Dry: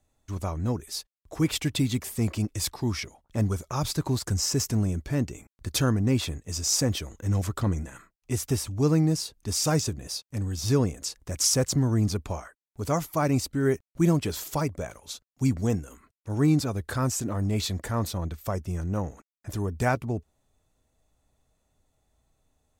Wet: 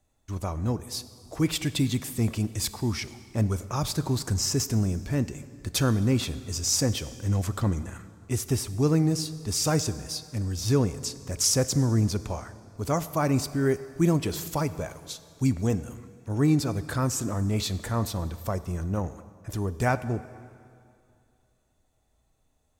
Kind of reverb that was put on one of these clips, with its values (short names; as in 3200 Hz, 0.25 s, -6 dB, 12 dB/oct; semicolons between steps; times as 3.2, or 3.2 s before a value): plate-style reverb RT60 2.4 s, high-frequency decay 0.85×, DRR 13.5 dB